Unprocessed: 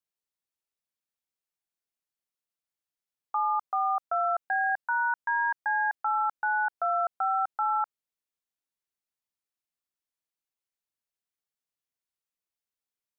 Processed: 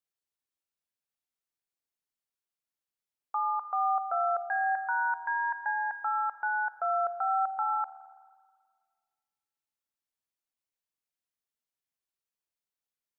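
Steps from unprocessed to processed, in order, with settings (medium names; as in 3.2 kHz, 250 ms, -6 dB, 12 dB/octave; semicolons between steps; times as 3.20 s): spring tank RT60 1.9 s, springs 40/53 ms, chirp 30 ms, DRR 12.5 dB; trim -2.5 dB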